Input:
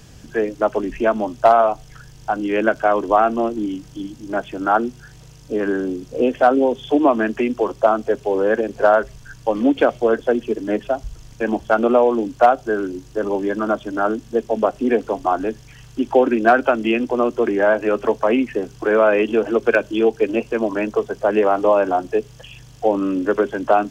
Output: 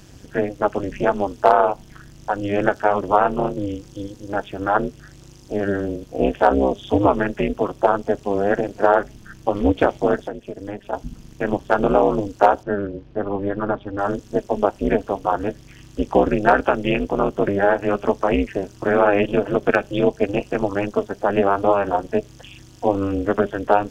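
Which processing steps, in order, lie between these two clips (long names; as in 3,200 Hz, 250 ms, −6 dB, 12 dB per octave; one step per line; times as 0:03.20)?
amplitude modulation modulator 200 Hz, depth 100%
0:10.21–0:10.93: downward compressor 8 to 1, threshold −29 dBFS, peak gain reduction 14 dB
0:12.63–0:13.99: high-frequency loss of the air 310 metres
level +2.5 dB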